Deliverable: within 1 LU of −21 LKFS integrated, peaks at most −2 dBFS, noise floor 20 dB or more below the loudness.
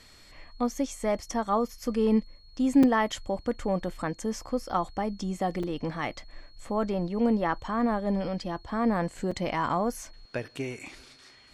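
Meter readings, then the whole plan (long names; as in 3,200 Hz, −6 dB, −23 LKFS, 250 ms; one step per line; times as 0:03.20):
number of dropouts 3; longest dropout 4.5 ms; interfering tone 4,300 Hz; level of the tone −57 dBFS; integrated loudness −29.0 LKFS; sample peak −12.0 dBFS; target loudness −21.0 LKFS
→ repair the gap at 0:02.83/0:05.63/0:09.31, 4.5 ms
notch filter 4,300 Hz, Q 30
level +8 dB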